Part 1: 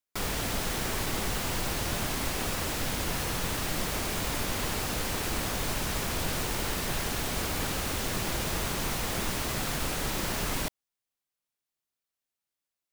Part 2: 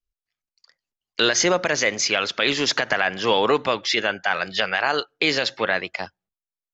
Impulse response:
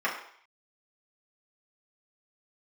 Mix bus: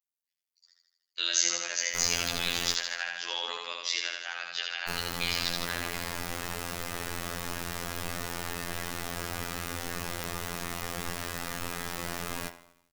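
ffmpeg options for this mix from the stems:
-filter_complex "[0:a]acompressor=mode=upward:threshold=-36dB:ratio=2.5,adelay=1800,volume=-3dB,asplit=3[link_01][link_02][link_03];[link_01]atrim=end=2.74,asetpts=PTS-STARTPTS,afade=type=out:start_time=2.736:duration=0.004:curve=hsin[link_04];[link_02]atrim=start=2.74:end=4.88,asetpts=PTS-STARTPTS,volume=0[link_05];[link_03]atrim=start=4.88,asetpts=PTS-STARTPTS,afade=type=in:duration=0.004:curve=hsin[link_06];[link_04][link_05][link_06]concat=n=3:v=0:a=1,asplit=3[link_07][link_08][link_09];[link_08]volume=-13.5dB[link_10];[link_09]volume=-18dB[link_11];[1:a]aderivative,bandreject=frequency=5300:width=26,volume=0.5dB,asplit=2[link_12][link_13];[link_13]volume=-3.5dB[link_14];[2:a]atrim=start_sample=2205[link_15];[link_10][link_15]afir=irnorm=-1:irlink=0[link_16];[link_11][link_14]amix=inputs=2:normalize=0,aecho=0:1:79|158|237|316|395|474|553|632|711:1|0.58|0.336|0.195|0.113|0.0656|0.0381|0.0221|0.0128[link_17];[link_07][link_12][link_16][link_17]amix=inputs=4:normalize=0,afftfilt=real='hypot(re,im)*cos(PI*b)':imag='0':win_size=2048:overlap=0.75"

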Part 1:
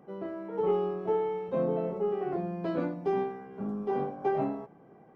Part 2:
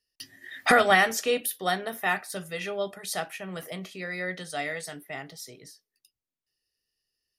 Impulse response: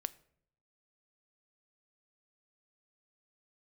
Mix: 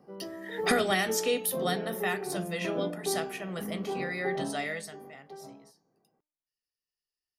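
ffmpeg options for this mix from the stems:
-filter_complex "[0:a]highshelf=frequency=3800:gain=-9.5,volume=-3.5dB,asplit=2[link_01][link_02];[link_02]volume=-14.5dB[link_03];[1:a]volume=-0.5dB,afade=type=out:start_time=4.74:duration=0.24:silence=0.251189[link_04];[link_03]aecho=0:1:1052:1[link_05];[link_01][link_04][link_05]amix=inputs=3:normalize=0,bandreject=frequency=301.9:width_type=h:width=4,bandreject=frequency=603.8:width_type=h:width=4,bandreject=frequency=905.7:width_type=h:width=4,bandreject=frequency=1207.6:width_type=h:width=4,bandreject=frequency=1509.5:width_type=h:width=4,bandreject=frequency=1811.4:width_type=h:width=4,bandreject=frequency=2113.3:width_type=h:width=4,bandreject=frequency=2415.2:width_type=h:width=4,bandreject=frequency=2717.1:width_type=h:width=4,bandreject=frequency=3019:width_type=h:width=4,bandreject=frequency=3320.9:width_type=h:width=4,bandreject=frequency=3622.8:width_type=h:width=4,bandreject=frequency=3924.7:width_type=h:width=4,bandreject=frequency=4226.6:width_type=h:width=4,bandreject=frequency=4528.5:width_type=h:width=4,bandreject=frequency=4830.4:width_type=h:width=4,bandreject=frequency=5132.3:width_type=h:width=4,bandreject=frequency=5434.2:width_type=h:width=4,bandreject=frequency=5736.1:width_type=h:width=4,bandreject=frequency=6038:width_type=h:width=4,bandreject=frequency=6339.9:width_type=h:width=4,bandreject=frequency=6641.8:width_type=h:width=4,bandreject=frequency=6943.7:width_type=h:width=4,bandreject=frequency=7245.6:width_type=h:width=4,acrossover=split=440|3000[link_06][link_07][link_08];[link_07]acompressor=threshold=-32dB:ratio=3[link_09];[link_06][link_09][link_08]amix=inputs=3:normalize=0"

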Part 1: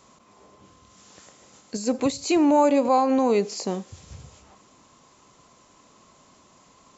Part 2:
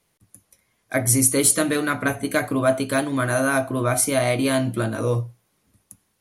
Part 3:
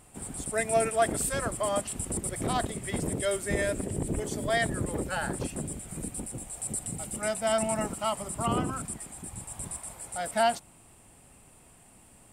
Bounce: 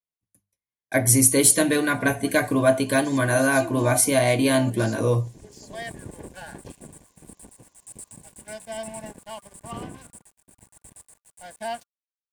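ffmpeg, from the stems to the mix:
ffmpeg -i stem1.wav -i stem2.wav -i stem3.wav -filter_complex "[0:a]highshelf=frequency=5200:gain=11,adelay=1300,volume=-15.5dB,asplit=3[link_01][link_02][link_03];[link_01]atrim=end=3.97,asetpts=PTS-STARTPTS,afade=type=out:start_time=3.966:duration=0.004:curve=hsin[link_04];[link_02]atrim=start=3.97:end=4.71,asetpts=PTS-STARTPTS,volume=0[link_05];[link_03]atrim=start=4.71,asetpts=PTS-STARTPTS,afade=type=in:duration=0.004:curve=hsin[link_06];[link_04][link_05][link_06]concat=n=3:v=0:a=1,asplit=2[link_07][link_08];[link_08]volume=-5.5dB[link_09];[1:a]agate=range=-33dB:threshold=-39dB:ratio=3:detection=peak,bandreject=frequency=50:width_type=h:width=6,bandreject=frequency=100:width_type=h:width=6,bandreject=frequency=150:width_type=h:width=6,bandreject=frequency=200:width_type=h:width=6,volume=1dB,asplit=2[link_10][link_11];[2:a]agate=range=-33dB:threshold=-42dB:ratio=3:detection=peak,aeval=exprs='sgn(val(0))*max(abs(val(0))-0.0112,0)':channel_layout=same,adelay=1250,volume=-5.5dB[link_12];[link_11]apad=whole_len=598516[link_13];[link_12][link_13]sidechaincompress=threshold=-30dB:ratio=8:attack=5.4:release=668[link_14];[link_09]aecho=0:1:732:1[link_15];[link_07][link_10][link_14][link_15]amix=inputs=4:normalize=0,asuperstop=centerf=1300:order=20:qfactor=6.5" out.wav

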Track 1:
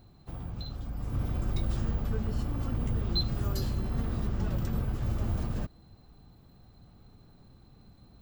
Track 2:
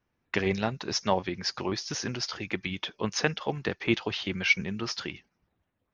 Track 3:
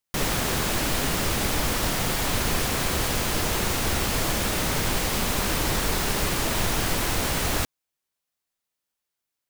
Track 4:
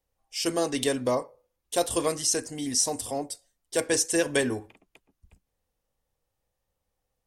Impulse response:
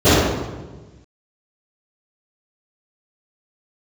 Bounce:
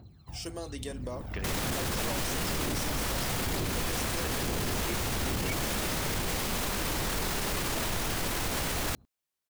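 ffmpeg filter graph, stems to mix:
-filter_complex "[0:a]highpass=frequency=57:width=0.5412,highpass=frequency=57:width=1.3066,aphaser=in_gain=1:out_gain=1:delay=1.6:decay=0.72:speed=1.1:type=triangular,aeval=exprs='0.355*(cos(1*acos(clip(val(0)/0.355,-1,1)))-cos(1*PI/2))+0.1*(cos(7*acos(clip(val(0)/0.355,-1,1)))-cos(7*PI/2))':channel_layout=same,volume=-3.5dB,asplit=2[link_01][link_02];[link_02]volume=-9.5dB[link_03];[1:a]adelay=1000,volume=-11dB[link_04];[2:a]adelay=1300,volume=-3.5dB[link_05];[3:a]acompressor=threshold=-29dB:ratio=2.5,volume=-8.5dB,asplit=2[link_06][link_07];[link_07]apad=whole_len=362347[link_08];[link_01][link_08]sidechaincompress=threshold=-39dB:ratio=8:attack=7.4:release=342[link_09];[link_03]aecho=0:1:834:1[link_10];[link_09][link_04][link_05][link_06][link_10]amix=inputs=5:normalize=0,alimiter=limit=-22dB:level=0:latency=1:release=13"

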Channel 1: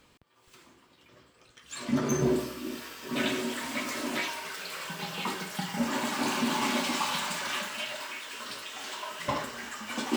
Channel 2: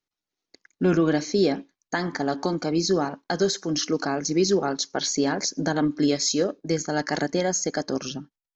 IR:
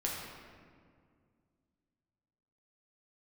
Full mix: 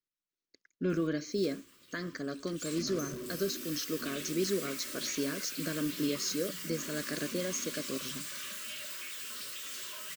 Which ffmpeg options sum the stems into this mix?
-filter_complex "[0:a]aemphasis=mode=production:type=75kf,acompressor=threshold=-28dB:ratio=6,asoftclip=type=tanh:threshold=-34dB,adelay=900,volume=-4dB[link_01];[1:a]volume=-10.5dB[link_02];[link_01][link_02]amix=inputs=2:normalize=0,asuperstop=centerf=820:order=4:qfactor=1.7"

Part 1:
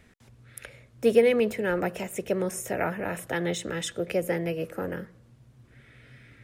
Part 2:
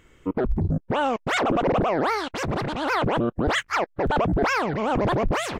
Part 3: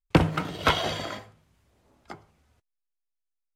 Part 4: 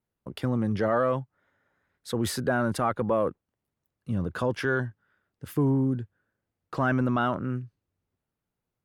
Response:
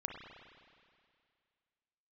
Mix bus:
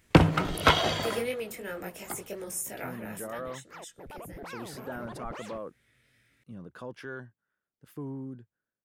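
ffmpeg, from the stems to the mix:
-filter_complex "[0:a]asoftclip=type=hard:threshold=-11dB,flanger=delay=18.5:depth=3.8:speed=2.9,crystalizer=i=4:c=0,volume=-2dB,afade=type=out:start_time=3.03:duration=0.47:silence=0.251189,afade=type=in:start_time=4.57:duration=0.35:silence=0.421697,asplit=2[link_01][link_02];[1:a]volume=-14.5dB[link_03];[2:a]volume=0.5dB,asplit=2[link_04][link_05];[link_05]volume=-16dB[link_06];[3:a]equalizer=frequency=88:width=2.5:gain=-12,adelay=2400,volume=-13.5dB[link_07];[link_02]apad=whole_len=246877[link_08];[link_03][link_08]sidechaincompress=threshold=-52dB:ratio=8:attack=16:release=1100[link_09];[4:a]atrim=start_sample=2205[link_10];[link_06][link_10]afir=irnorm=-1:irlink=0[link_11];[link_01][link_09][link_04][link_07][link_11]amix=inputs=5:normalize=0"

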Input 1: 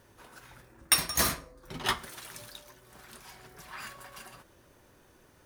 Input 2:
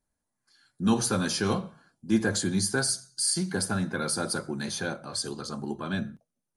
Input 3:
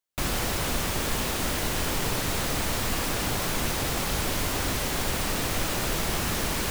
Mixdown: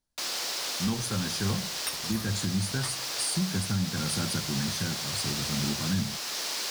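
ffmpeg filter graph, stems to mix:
ffmpeg -i stem1.wav -i stem2.wav -i stem3.wav -filter_complex "[0:a]adelay=950,volume=-7dB[link_01];[1:a]asubboost=boost=9:cutoff=160,volume=-3.5dB[link_02];[2:a]highpass=460,equalizer=frequency=4900:width_type=o:width=1.2:gain=13,volume=-8dB[link_03];[link_01][link_02][link_03]amix=inputs=3:normalize=0,alimiter=limit=-18.5dB:level=0:latency=1:release=438" out.wav

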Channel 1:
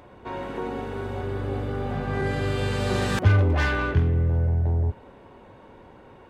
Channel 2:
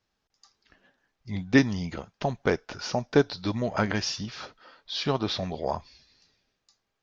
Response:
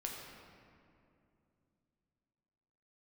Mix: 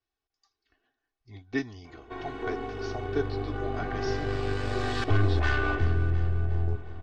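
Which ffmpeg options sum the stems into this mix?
-filter_complex "[0:a]aeval=exprs='(tanh(8.91*val(0)+0.7)-tanh(0.7))/8.91':channel_layout=same,adelay=1850,volume=-3dB,asplit=2[link_01][link_02];[link_02]volume=-12.5dB[link_03];[1:a]volume=-13dB[link_04];[link_03]aecho=0:1:354|708|1062|1416|1770|2124|2478:1|0.51|0.26|0.133|0.0677|0.0345|0.0176[link_05];[link_01][link_04][link_05]amix=inputs=3:normalize=0,lowpass=5800,aecho=1:1:2.7:0.89"

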